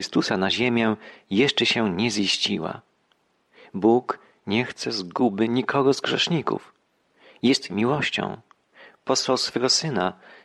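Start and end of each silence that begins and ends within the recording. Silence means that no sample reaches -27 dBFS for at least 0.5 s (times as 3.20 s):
2.75–3.75 s
6.57–7.43 s
8.34–9.09 s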